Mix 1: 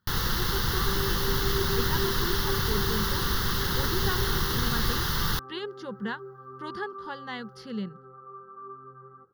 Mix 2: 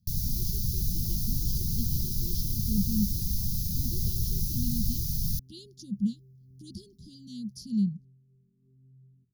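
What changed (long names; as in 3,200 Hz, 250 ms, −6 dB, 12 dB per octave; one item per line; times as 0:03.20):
speech +11.0 dB
master: add inverse Chebyshev band-stop filter 630–1,900 Hz, stop band 70 dB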